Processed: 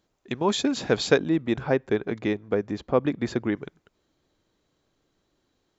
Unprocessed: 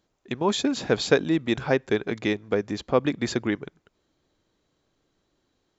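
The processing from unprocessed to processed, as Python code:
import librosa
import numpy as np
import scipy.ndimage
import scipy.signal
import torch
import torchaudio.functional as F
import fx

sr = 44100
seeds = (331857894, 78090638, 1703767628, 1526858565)

y = fx.high_shelf(x, sr, hz=2600.0, db=-11.0, at=(1.17, 3.57))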